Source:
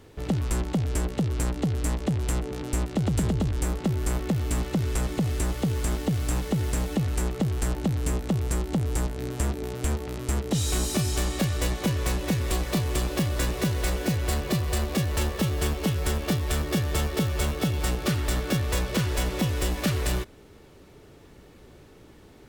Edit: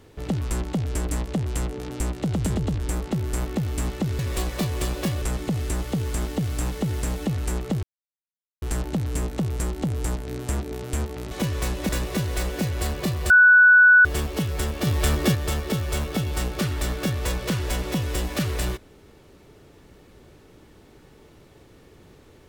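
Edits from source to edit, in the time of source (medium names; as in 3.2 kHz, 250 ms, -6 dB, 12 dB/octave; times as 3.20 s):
1.09–1.82 s: delete
7.53 s: insert silence 0.79 s
10.22–11.75 s: delete
12.33–13.36 s: move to 4.92 s
14.77–15.52 s: bleep 1.48 kHz -9.5 dBFS
16.34–16.82 s: gain +5 dB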